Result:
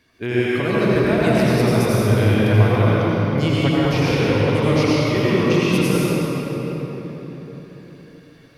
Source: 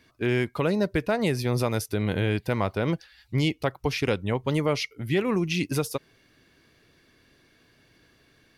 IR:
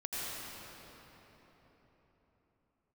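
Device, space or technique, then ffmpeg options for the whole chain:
cathedral: -filter_complex "[1:a]atrim=start_sample=2205[a];[0:a][a]afir=irnorm=-1:irlink=0,volume=4dB"

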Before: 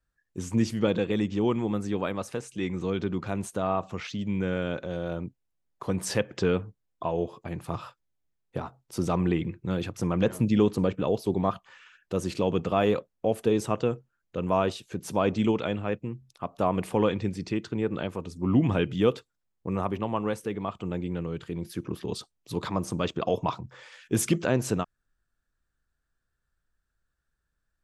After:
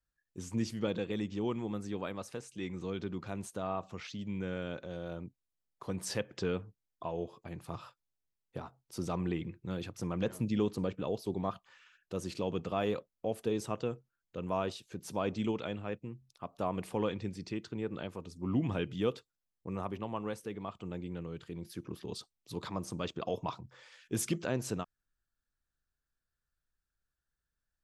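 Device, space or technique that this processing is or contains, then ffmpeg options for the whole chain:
presence and air boost: -af "equalizer=f=4.7k:t=o:w=0.94:g=3.5,highshelf=f=10k:g=3.5,volume=-9dB"

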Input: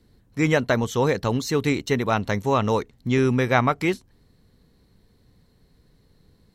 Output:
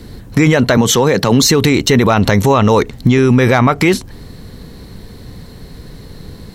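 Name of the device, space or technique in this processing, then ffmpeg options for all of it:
loud club master: -filter_complex "[0:a]asettb=1/sr,asplit=3[a][b][c];[a]atrim=end=0.774[d];[b]atrim=start=0.77:end=1.43,asetpts=PTS-STARTPTS,afade=t=in:d=0.004:c=qsin,afade=t=out:st=0.656:d=0.004:c=qsin,highpass=f=120:w=0.5412,highpass=f=120:w=1.3066[e];[c]atrim=start=1.426[f];[d][e]acrossfade=d=0.004:c1=hsin:c2=qsin[g];[g][f]acrossfade=d=0.004:c1=qsin:c2=hsin,acompressor=threshold=-23dB:ratio=3,asoftclip=type=hard:threshold=-15dB,alimiter=level_in=26.5dB:limit=-1dB:release=50:level=0:latency=1,volume=-1dB"

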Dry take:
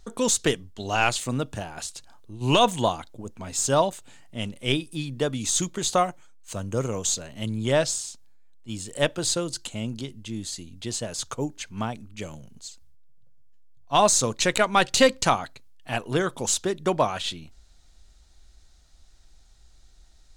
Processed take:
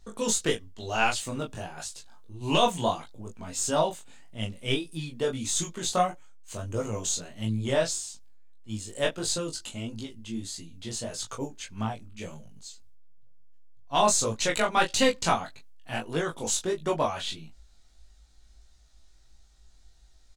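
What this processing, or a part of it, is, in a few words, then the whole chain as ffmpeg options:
double-tracked vocal: -filter_complex "[0:a]asplit=2[a][b];[b]adelay=18,volume=-4dB[c];[a][c]amix=inputs=2:normalize=0,flanger=delay=19:depth=3.8:speed=1.6,volume=-2dB"

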